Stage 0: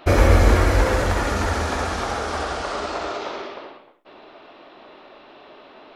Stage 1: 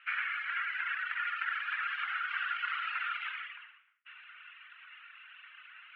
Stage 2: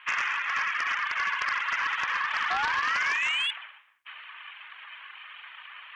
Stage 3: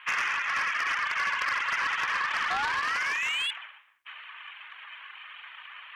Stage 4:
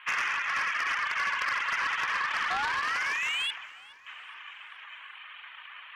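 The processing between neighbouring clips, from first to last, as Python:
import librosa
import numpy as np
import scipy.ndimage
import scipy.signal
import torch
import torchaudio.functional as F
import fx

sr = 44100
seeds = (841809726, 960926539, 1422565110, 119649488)

y1 = scipy.signal.sosfilt(scipy.signal.ellip(3, 1.0, 60, [1400.0, 2900.0], 'bandpass', fs=sr, output='sos'), x)
y1 = fx.dereverb_blind(y1, sr, rt60_s=1.4)
y1 = fx.rider(y1, sr, range_db=5, speed_s=0.5)
y2 = fx.spec_paint(y1, sr, seeds[0], shape='rise', start_s=2.5, length_s=1.01, low_hz=1000.0, high_hz=3200.0, level_db=-35.0)
y2 = fx.fold_sine(y2, sr, drive_db=7, ceiling_db=-19.5)
y2 = y2 * np.sin(2.0 * np.pi * 290.0 * np.arange(len(y2)) / sr)
y3 = 10.0 ** (-21.5 / 20.0) * np.tanh(y2 / 10.0 ** (-21.5 / 20.0))
y3 = fx.rider(y3, sr, range_db=10, speed_s=0.5)
y3 = F.gain(torch.from_numpy(y3), 1.0).numpy()
y4 = fx.echo_feedback(y3, sr, ms=420, feedback_pct=59, wet_db=-22.0)
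y4 = F.gain(torch.from_numpy(y4), -1.0).numpy()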